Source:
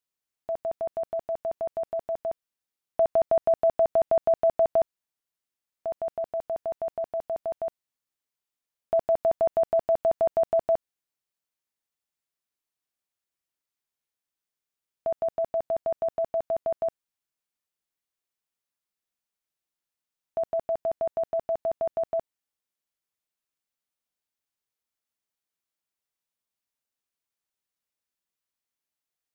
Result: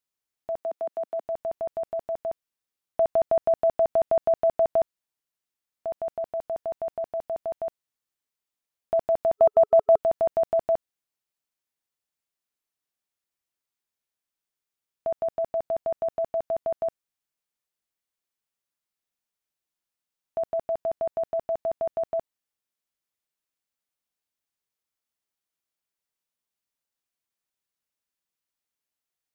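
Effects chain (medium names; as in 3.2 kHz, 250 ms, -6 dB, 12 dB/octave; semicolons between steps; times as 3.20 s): 0.58–1.24 s: high-pass 250 Hz 24 dB/octave; 9.38–9.97 s: time-frequency box 420–1300 Hz +6 dB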